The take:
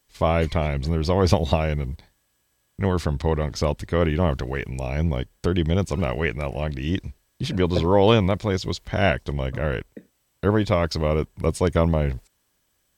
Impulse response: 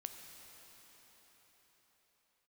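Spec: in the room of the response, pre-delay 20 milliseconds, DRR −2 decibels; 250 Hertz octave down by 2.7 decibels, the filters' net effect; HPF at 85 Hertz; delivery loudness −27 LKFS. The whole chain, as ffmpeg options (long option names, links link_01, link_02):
-filter_complex "[0:a]highpass=85,equalizer=frequency=250:width_type=o:gain=-4,asplit=2[link_01][link_02];[1:a]atrim=start_sample=2205,adelay=20[link_03];[link_02][link_03]afir=irnorm=-1:irlink=0,volume=5dB[link_04];[link_01][link_04]amix=inputs=2:normalize=0,volume=-6dB"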